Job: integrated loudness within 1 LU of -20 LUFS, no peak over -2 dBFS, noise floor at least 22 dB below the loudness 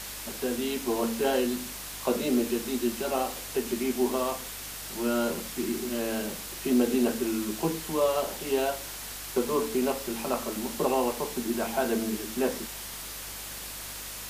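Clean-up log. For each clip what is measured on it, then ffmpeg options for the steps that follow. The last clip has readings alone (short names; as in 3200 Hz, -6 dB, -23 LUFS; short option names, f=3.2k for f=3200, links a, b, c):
hum 50 Hz; harmonics up to 300 Hz; hum level -48 dBFS; noise floor -39 dBFS; noise floor target -52 dBFS; loudness -29.5 LUFS; peak -13.0 dBFS; loudness target -20.0 LUFS
-> -af "bandreject=f=50:t=h:w=4,bandreject=f=100:t=h:w=4,bandreject=f=150:t=h:w=4,bandreject=f=200:t=h:w=4,bandreject=f=250:t=h:w=4,bandreject=f=300:t=h:w=4"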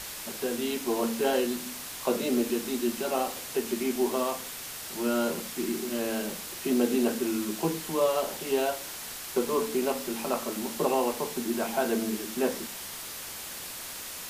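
hum none; noise floor -40 dBFS; noise floor target -52 dBFS
-> -af "afftdn=nr=12:nf=-40"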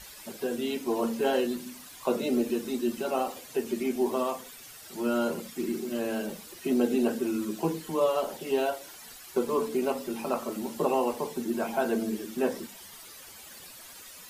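noise floor -48 dBFS; noise floor target -52 dBFS
-> -af "afftdn=nr=6:nf=-48"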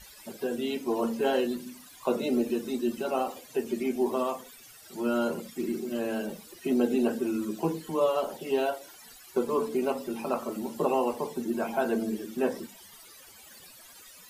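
noise floor -51 dBFS; noise floor target -52 dBFS
-> -af "afftdn=nr=6:nf=-51"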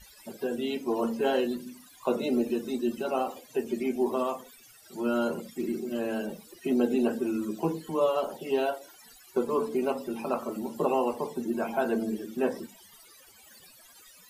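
noise floor -55 dBFS; loudness -30.0 LUFS; peak -13.0 dBFS; loudness target -20.0 LUFS
-> -af "volume=10dB"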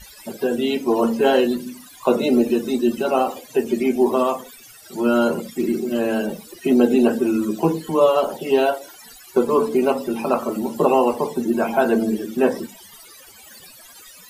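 loudness -20.0 LUFS; peak -3.0 dBFS; noise floor -45 dBFS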